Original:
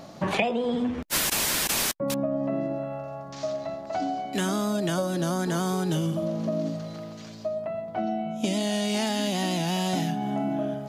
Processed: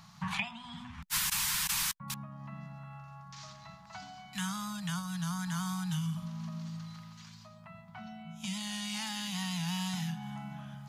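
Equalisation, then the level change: Chebyshev band-stop 180–950 Hz, order 3; -5.5 dB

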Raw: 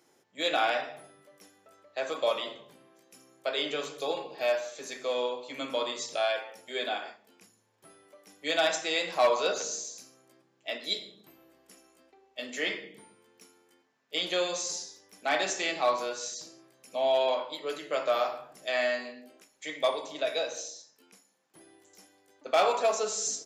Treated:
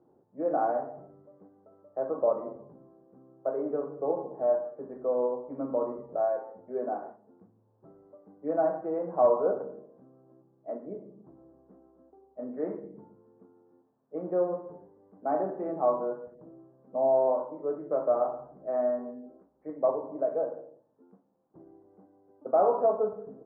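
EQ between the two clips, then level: Bessel low-pass 650 Hz, order 8; bass shelf 140 Hz +9 dB; hum notches 50/100/150 Hz; +4.5 dB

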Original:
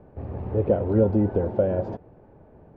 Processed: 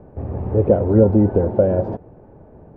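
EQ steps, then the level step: treble shelf 2.2 kHz -12 dB; +7.0 dB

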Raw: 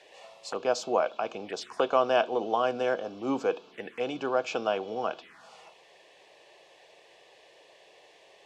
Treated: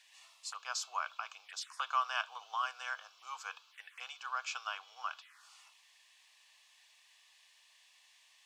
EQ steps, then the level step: dynamic bell 1.2 kHz, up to +6 dB, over -38 dBFS, Q 0.9; ladder high-pass 930 Hz, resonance 45%; differentiator; +10.0 dB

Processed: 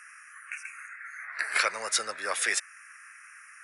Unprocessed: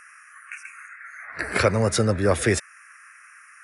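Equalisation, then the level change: high-pass 1.3 kHz 12 dB/octave; 0.0 dB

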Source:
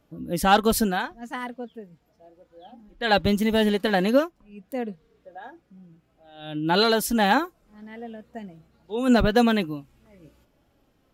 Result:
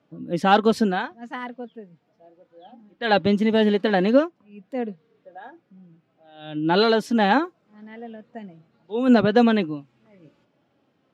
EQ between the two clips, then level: high-pass 120 Hz 24 dB/octave; low-pass 4.2 kHz 12 dB/octave; dynamic bell 340 Hz, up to +4 dB, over -30 dBFS, Q 0.86; 0.0 dB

